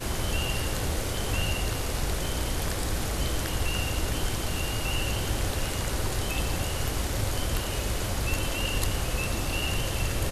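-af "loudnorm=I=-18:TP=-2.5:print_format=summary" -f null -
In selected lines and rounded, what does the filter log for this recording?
Input Integrated:    -29.3 LUFS
Input True Peak:     -12.2 dBTP
Input LRA:             0.5 LU
Input Threshold:     -39.3 LUFS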